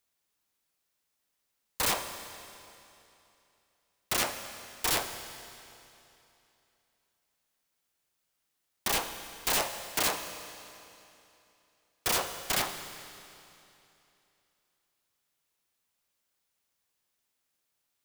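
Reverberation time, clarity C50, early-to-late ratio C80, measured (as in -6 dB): 2.9 s, 9.0 dB, 9.0 dB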